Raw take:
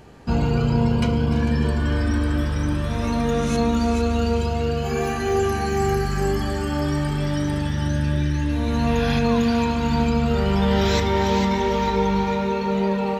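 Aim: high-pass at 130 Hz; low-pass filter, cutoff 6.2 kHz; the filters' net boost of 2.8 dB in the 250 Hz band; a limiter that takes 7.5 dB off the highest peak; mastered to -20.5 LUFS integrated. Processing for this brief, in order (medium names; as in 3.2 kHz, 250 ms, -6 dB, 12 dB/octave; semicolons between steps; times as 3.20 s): high-pass 130 Hz; low-pass 6.2 kHz; peaking EQ 250 Hz +4 dB; trim +3 dB; peak limiter -12 dBFS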